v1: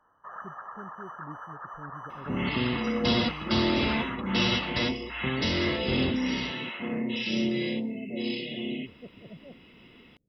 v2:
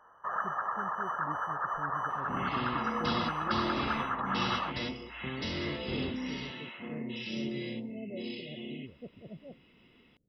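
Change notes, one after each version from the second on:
first sound +8.0 dB
second sound −8.5 dB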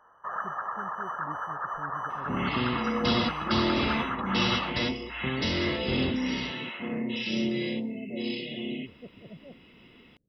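second sound +7.5 dB

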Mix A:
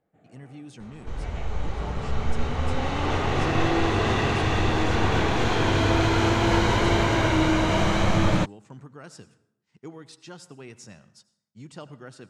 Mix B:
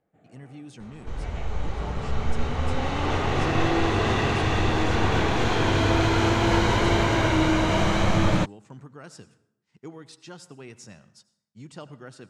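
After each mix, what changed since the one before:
nothing changed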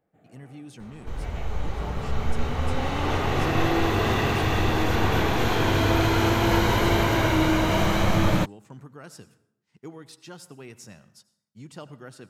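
master: remove low-pass filter 9,100 Hz 24 dB per octave

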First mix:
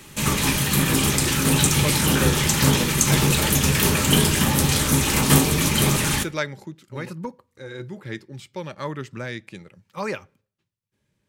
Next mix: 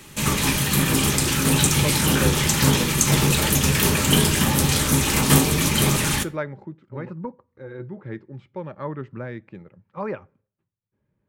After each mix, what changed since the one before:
speech: add low-pass filter 1,300 Hz 12 dB per octave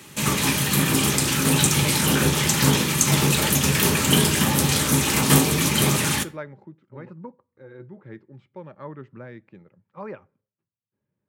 speech −6.5 dB
master: add high-pass filter 100 Hz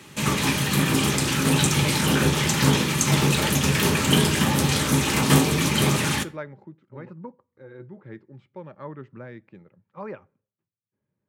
background: add high-shelf EQ 7,900 Hz −9.5 dB

